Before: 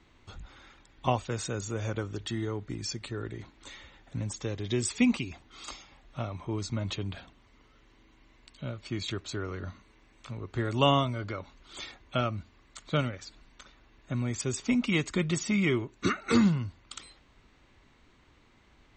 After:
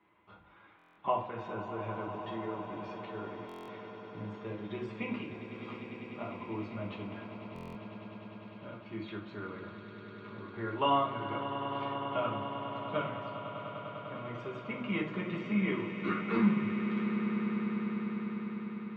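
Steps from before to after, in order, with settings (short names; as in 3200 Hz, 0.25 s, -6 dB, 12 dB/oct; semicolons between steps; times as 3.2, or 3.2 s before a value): speaker cabinet 190–2600 Hz, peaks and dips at 240 Hz -6 dB, 1000 Hz +6 dB, 1800 Hz -3 dB; swelling echo 0.1 s, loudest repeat 8, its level -13.5 dB; reverb RT60 0.50 s, pre-delay 5 ms, DRR -1.5 dB; stuck buffer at 0.77/3.47/7.54, samples 1024, times 8; gain -8.5 dB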